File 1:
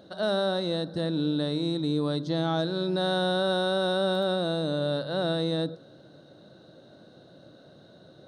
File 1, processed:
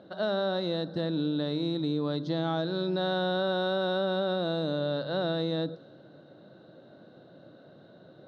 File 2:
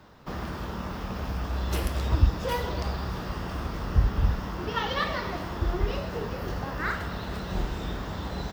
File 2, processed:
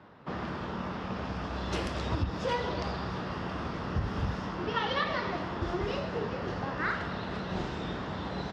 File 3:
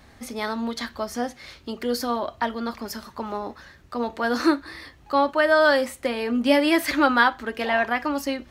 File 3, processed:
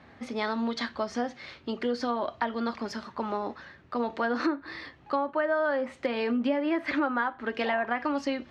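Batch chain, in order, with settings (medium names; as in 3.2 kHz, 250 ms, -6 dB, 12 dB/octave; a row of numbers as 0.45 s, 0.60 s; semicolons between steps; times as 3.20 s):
level-controlled noise filter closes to 2.7 kHz, open at -17.5 dBFS; high-pass 110 Hz 12 dB/octave; low-pass that closes with the level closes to 1.7 kHz, closed at -18 dBFS; compression 4:1, threshold -25 dBFS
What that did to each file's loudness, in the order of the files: -2.5 LU, -3.5 LU, -6.5 LU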